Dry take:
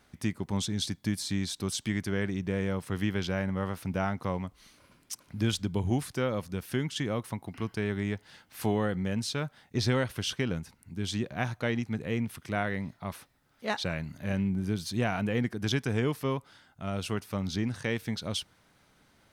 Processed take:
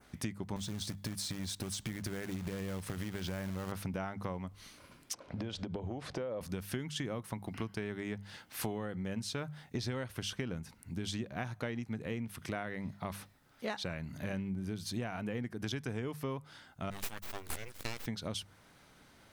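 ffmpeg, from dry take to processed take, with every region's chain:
-filter_complex "[0:a]asettb=1/sr,asplit=3[a][b][c];[a]atrim=end=0.564[d];[b]atrim=start=0.56:end=3.72,asetpts=PTS-STARTPTS,afade=t=in:d=0.004:c=qsin,afade=t=out:st=3.156:d=0.004:c=qsin,lowshelf=f=110:g=8.5,acrusher=bits=3:mode=log:mix=0:aa=0.000001,acompressor=threshold=-33dB:ratio=6:attack=3.2:release=140:knee=1:detection=peak[e];[c]atrim=start=3.716[f];[d][e]acrossfade=d=0.004:c1=hsin:c2=qsin[g];[g][f]acrossfade=d=0.004:c1=qsin:c2=hsin,asettb=1/sr,asplit=3[h][i][j];[h]atrim=end=5.134[k];[i]atrim=start=5.13:end=6.41,asetpts=PTS-STARTPTS,afade=t=in:d=0.004:c=qsin,afade=t=out:st=1.276:d=0.004:c=qsin,lowpass=4.3k,equalizer=f=560:t=o:w=1.2:g=12.5,acompressor=threshold=-34dB:ratio=6:attack=3.2:release=140:knee=1:detection=peak[l];[j]atrim=start=6.406[m];[k][l]acrossfade=d=0.004:c1=hsin:c2=qsin[n];[n][m]acrossfade=d=0.004:c1=qsin:c2=hsin,asettb=1/sr,asplit=3[o][p][q];[o]atrim=end=16.904[r];[p]atrim=start=16.9:end=18.06,asetpts=PTS-STARTPTS,afade=t=in:d=0.004:c=qsin,afade=t=out:st=1.156:d=0.004:c=qsin,aemphasis=mode=production:type=riaa,agate=range=-33dB:threshold=-32dB:ratio=3:release=100:detection=peak,aeval=exprs='abs(val(0))':c=same[s];[q]atrim=start=18.056[t];[r][s]acrossfade=d=0.004:c1=hsin:c2=qsin[u];[u][t]acrossfade=d=0.004:c1=qsin:c2=hsin,bandreject=f=50:t=h:w=6,bandreject=f=100:t=h:w=6,bandreject=f=150:t=h:w=6,bandreject=f=200:t=h:w=6,adynamicequalizer=threshold=0.00355:dfrequency=3900:dqfactor=0.95:tfrequency=3900:tqfactor=0.95:attack=5:release=100:ratio=0.375:range=2:mode=cutabove:tftype=bell,acompressor=threshold=-38dB:ratio=6,volume=3dB"

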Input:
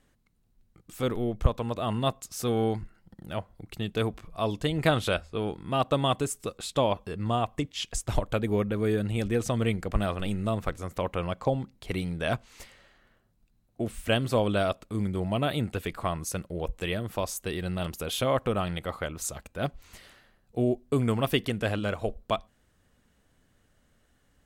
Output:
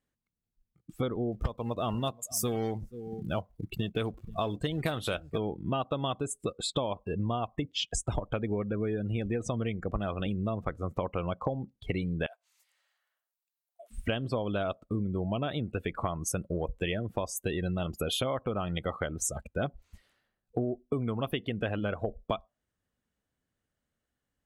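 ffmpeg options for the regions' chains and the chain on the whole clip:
-filter_complex "[0:a]asettb=1/sr,asplit=3[a][b][c];[a]atrim=end=1.324[d];[b]atrim=start=1.32:end=5.38,asetpts=PTS-STARTPTS,afade=t=in:d=0.004:c=qsin,afade=t=out:st=4.056:d=0.004:c=qsin,highshelf=f=9.4k:g=11,acrusher=bits=3:mode=log:mix=0:aa=0.000001,aecho=1:1:480:0.0944,atrim=end_sample=179046[e];[c]atrim=start=5.376[f];[d][e]acrossfade=d=0.004:c1=hsin:c2=qsin[g];[g][f]acrossfade=d=0.004:c1=qsin:c2=hsin,asettb=1/sr,asplit=3[h][i][j];[h]atrim=end=12.264[k];[i]atrim=start=12.26:end=13.91,asetpts=PTS-STARTPTS,afade=t=in:d=0.004:c=qsin,afade=t=out:st=1.646:d=0.004:c=qsin,highpass=f=680:w=0.5412,highpass=f=680:w=1.3066,aemphasis=mode=production:type=50kf,acompressor=threshold=-54dB:ratio=2.5:attack=3.2:release=140:knee=1:detection=peak[l];[j]atrim=start=13.906[m];[k][l]acrossfade=d=0.004:c1=hsin:c2=qsin[n];[n][m]acrossfade=d=0.004:c1=qsin:c2=hsin,afftdn=nr=25:nf=-38,highpass=f=48:p=1,acompressor=threshold=-36dB:ratio=10,volume=8dB"

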